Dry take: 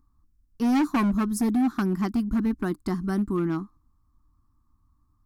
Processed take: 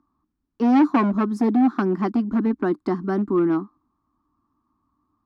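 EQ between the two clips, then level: high-pass 180 Hz 6 dB/octave; three-band isolator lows -16 dB, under 250 Hz, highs -21 dB, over 5.5 kHz; tilt shelf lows +7 dB, about 1.2 kHz; +5.0 dB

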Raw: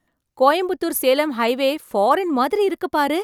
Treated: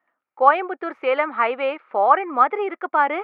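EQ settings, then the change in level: cabinet simulation 480–2300 Hz, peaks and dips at 800 Hz +4 dB, 1.3 kHz +10 dB, 2.3 kHz +7 dB; -2.0 dB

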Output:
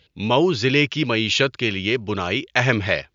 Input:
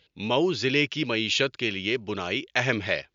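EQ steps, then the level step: dynamic bell 1.1 kHz, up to +4 dB, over -39 dBFS, Q 1.2; peaking EQ 77 Hz +7.5 dB 2.4 oct; +4.0 dB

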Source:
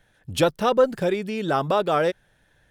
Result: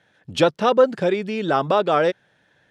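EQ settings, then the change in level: high-pass 150 Hz 12 dB/octave; low-pass 5.7 kHz 12 dB/octave; +3.0 dB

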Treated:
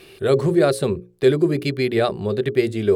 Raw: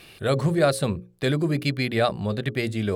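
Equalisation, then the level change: peaking EQ 390 Hz +14.5 dB 0.37 oct; 0.0 dB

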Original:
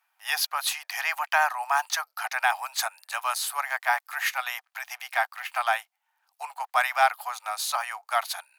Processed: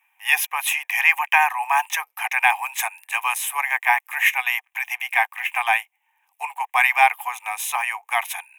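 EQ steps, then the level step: peaking EQ 2.4 kHz +7.5 dB 0.56 oct; static phaser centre 920 Hz, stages 8; +7.0 dB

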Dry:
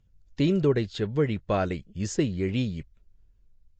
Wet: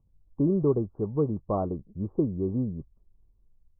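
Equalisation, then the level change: rippled Chebyshev low-pass 1.2 kHz, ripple 3 dB; 0.0 dB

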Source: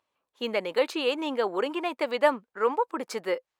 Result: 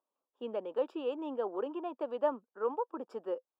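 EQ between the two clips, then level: boxcar filter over 21 samples; high-pass 220 Hz 24 dB/octave; -6.5 dB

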